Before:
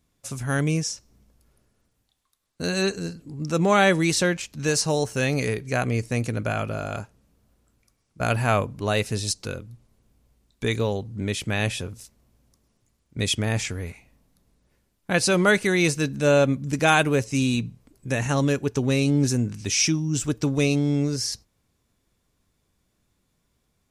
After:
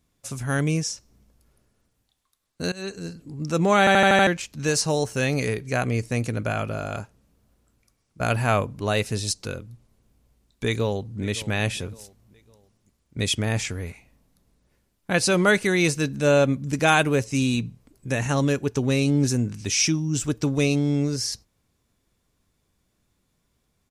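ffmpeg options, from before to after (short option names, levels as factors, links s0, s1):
-filter_complex "[0:a]asplit=2[s0][s1];[s1]afade=t=in:st=10.65:d=0.01,afade=t=out:st=11.21:d=0.01,aecho=0:1:560|1120|1680:0.133352|0.0533409|0.0213363[s2];[s0][s2]amix=inputs=2:normalize=0,asplit=8[s3][s4][s5][s6][s7][s8][s9][s10];[s3]atrim=end=2.72,asetpts=PTS-STARTPTS,afade=t=out:st=2.716:d=0.004:c=hsin:silence=0.112202[s11];[s4]atrim=start=2.72:end=3.872,asetpts=PTS-STARTPTS,afade=t=in:d=0.5:silence=0.112202[s12];[s5]atrim=start=3.788:end=3.872[s13];[s6]atrim=start=3.788:end=3.872[s14];[s7]atrim=start=3.788:end=3.872[s15];[s8]atrim=start=3.788:end=3.872[s16];[s9]atrim=start=3.788:end=3.872[s17];[s10]atrim=start=4.268[s18];[s11][s12]concat=n=2:v=0:a=1[s19];[s19][s13]acrossfade=d=0.004:c1=hsin:c2=hsin[s20];[s20][s14]acrossfade=d=0.004:c1=hsin:c2=hsin[s21];[s21][s15]acrossfade=d=0.004:c1=hsin:c2=hsin[s22];[s22][s16]acrossfade=d=0.004:c1=hsin:c2=hsin[s23];[s23][s17]acrossfade=d=0.004:c1=hsin:c2=hsin[s24];[s24][s18]acrossfade=d=0.004:c1=hsin:c2=hsin"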